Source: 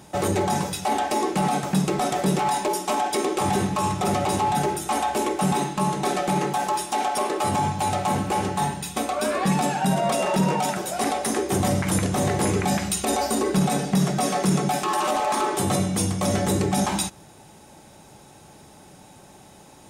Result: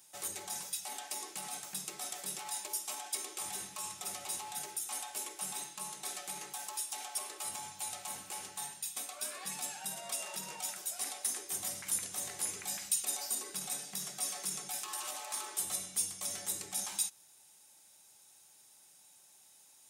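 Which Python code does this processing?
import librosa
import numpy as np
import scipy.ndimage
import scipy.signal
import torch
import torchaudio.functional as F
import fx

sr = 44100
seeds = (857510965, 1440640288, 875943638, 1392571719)

y = librosa.effects.preemphasis(x, coef=0.97, zi=[0.0])
y = y * 10.0 ** (-5.5 / 20.0)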